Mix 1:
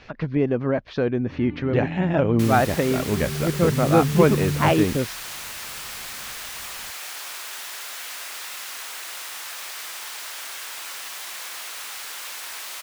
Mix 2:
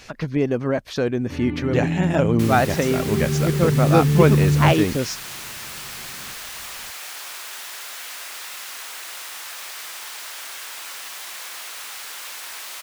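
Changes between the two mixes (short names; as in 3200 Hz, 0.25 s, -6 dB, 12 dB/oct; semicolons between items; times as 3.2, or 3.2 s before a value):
speech: remove air absorption 250 m; first sound +8.0 dB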